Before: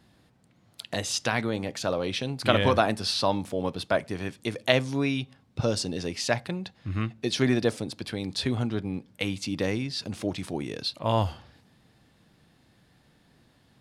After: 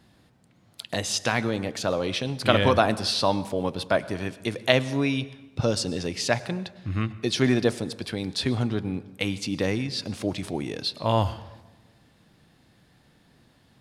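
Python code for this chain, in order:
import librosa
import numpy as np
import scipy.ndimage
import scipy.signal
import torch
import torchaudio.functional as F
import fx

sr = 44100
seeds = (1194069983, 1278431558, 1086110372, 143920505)

y = fx.rev_plate(x, sr, seeds[0], rt60_s=1.1, hf_ratio=0.65, predelay_ms=90, drr_db=17.0)
y = y * 10.0 ** (2.0 / 20.0)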